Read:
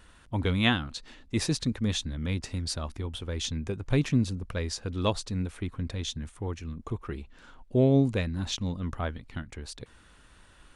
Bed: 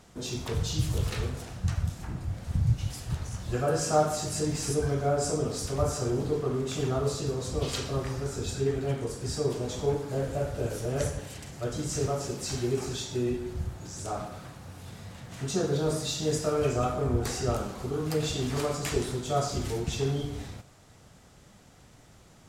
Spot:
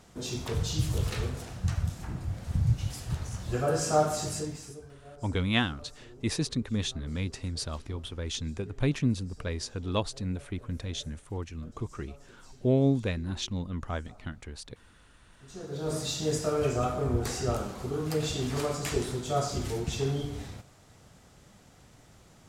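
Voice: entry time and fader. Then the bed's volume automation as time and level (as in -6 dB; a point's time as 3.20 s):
4.90 s, -2.0 dB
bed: 4.30 s -0.5 dB
4.93 s -23.5 dB
15.34 s -23.5 dB
15.97 s -1 dB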